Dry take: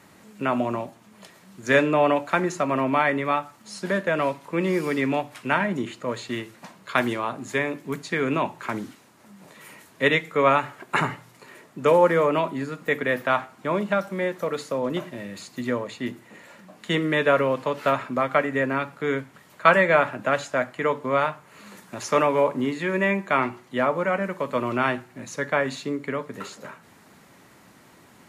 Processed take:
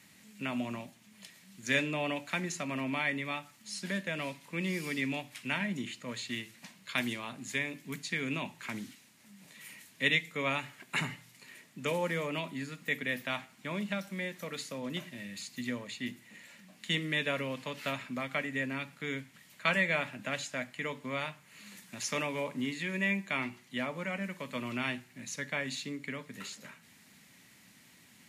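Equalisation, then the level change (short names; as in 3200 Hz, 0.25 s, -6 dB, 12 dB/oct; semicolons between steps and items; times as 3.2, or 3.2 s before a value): low shelf 190 Hz -11 dB; band shelf 690 Hz -13 dB 2.5 oct; dynamic EQ 1500 Hz, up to -4 dB, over -39 dBFS, Q 1.2; -1.5 dB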